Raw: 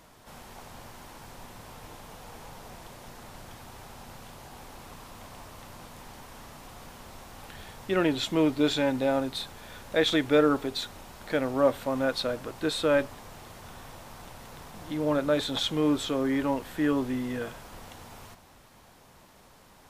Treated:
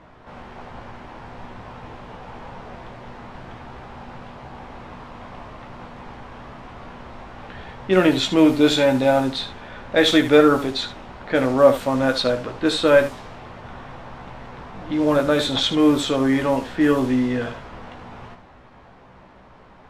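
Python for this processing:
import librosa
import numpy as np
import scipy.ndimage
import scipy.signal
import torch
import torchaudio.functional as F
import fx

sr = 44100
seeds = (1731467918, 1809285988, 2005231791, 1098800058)

y = fx.env_lowpass(x, sr, base_hz=2000.0, full_db=-21.0)
y = fx.room_early_taps(y, sr, ms=(16, 75), db=(-6.0, -11.5))
y = F.gain(torch.from_numpy(y), 7.5).numpy()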